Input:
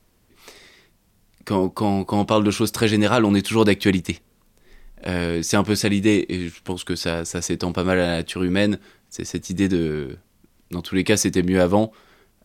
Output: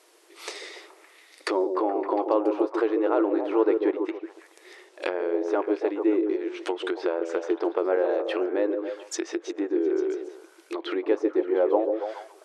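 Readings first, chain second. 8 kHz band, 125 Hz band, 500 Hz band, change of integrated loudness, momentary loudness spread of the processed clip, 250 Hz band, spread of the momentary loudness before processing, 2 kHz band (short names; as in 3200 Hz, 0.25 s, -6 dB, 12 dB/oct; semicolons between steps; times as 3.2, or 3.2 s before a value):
-15.5 dB, under -40 dB, -0.5 dB, -5.0 dB, 13 LU, -6.5 dB, 12 LU, -10.5 dB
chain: compressor 2:1, threshold -33 dBFS, peak gain reduction 12 dB; treble ducked by the level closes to 910 Hz, closed at -27.5 dBFS; brick-wall FIR band-pass 300–12000 Hz; on a send: delay with a stepping band-pass 0.141 s, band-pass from 390 Hz, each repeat 0.7 oct, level -4 dB; on the sum: gain +8 dB; Vorbis 192 kbps 44100 Hz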